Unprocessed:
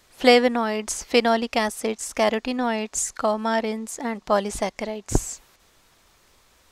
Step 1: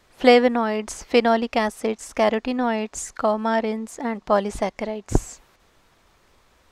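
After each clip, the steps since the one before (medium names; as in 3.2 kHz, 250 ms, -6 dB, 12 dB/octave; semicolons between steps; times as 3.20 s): treble shelf 3.5 kHz -10 dB; trim +2 dB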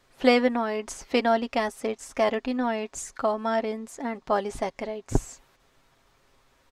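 comb 7.4 ms, depth 40%; trim -5 dB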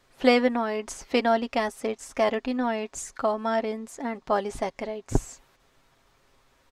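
no audible change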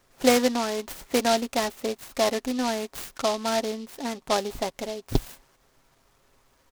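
delay time shaken by noise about 3.9 kHz, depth 0.076 ms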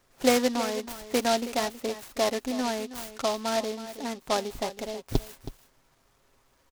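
delay 322 ms -13.5 dB; trim -2.5 dB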